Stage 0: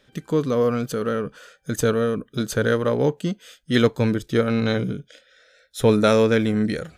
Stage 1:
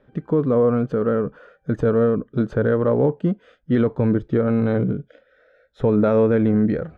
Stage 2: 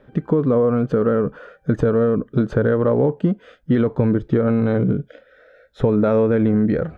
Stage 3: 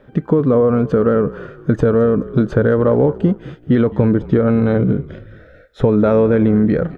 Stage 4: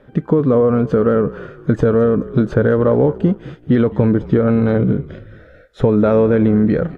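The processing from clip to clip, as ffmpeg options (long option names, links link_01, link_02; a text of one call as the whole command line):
ffmpeg -i in.wav -af "lowpass=1100,alimiter=level_in=13dB:limit=-1dB:release=50:level=0:latency=1,volume=-8.5dB" out.wav
ffmpeg -i in.wav -af "acompressor=threshold=-20dB:ratio=6,volume=6.5dB" out.wav
ffmpeg -i in.wav -filter_complex "[0:a]asplit=4[link_01][link_02][link_03][link_04];[link_02]adelay=213,afreqshift=-40,volume=-18.5dB[link_05];[link_03]adelay=426,afreqshift=-80,volume=-25.8dB[link_06];[link_04]adelay=639,afreqshift=-120,volume=-33.2dB[link_07];[link_01][link_05][link_06][link_07]amix=inputs=4:normalize=0,volume=3.5dB" out.wav
ffmpeg -i in.wav -ar 32000 -c:a aac -b:a 64k out.aac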